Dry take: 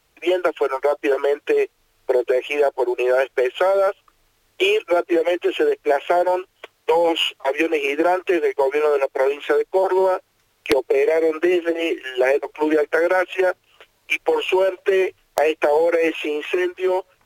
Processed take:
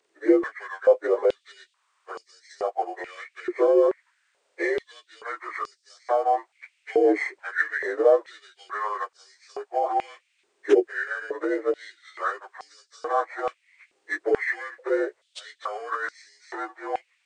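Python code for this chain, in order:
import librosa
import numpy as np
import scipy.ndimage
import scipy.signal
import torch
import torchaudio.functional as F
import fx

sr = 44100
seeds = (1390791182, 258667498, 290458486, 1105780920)

y = fx.partial_stretch(x, sr, pct=86)
y = fx.filter_held_highpass(y, sr, hz=2.3, low_hz=360.0, high_hz=5000.0)
y = y * 10.0 ** (-7.0 / 20.0)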